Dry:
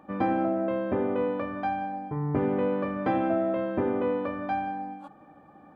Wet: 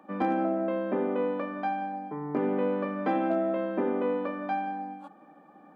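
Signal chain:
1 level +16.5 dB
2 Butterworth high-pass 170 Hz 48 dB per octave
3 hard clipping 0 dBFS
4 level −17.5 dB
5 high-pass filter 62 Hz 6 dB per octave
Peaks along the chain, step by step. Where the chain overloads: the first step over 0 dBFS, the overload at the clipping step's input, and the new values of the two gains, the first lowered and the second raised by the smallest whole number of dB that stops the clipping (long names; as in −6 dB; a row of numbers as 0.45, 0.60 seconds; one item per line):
+2.5, +4.0, 0.0, −17.5, −16.5 dBFS
step 1, 4.0 dB
step 1 +12.5 dB, step 4 −13.5 dB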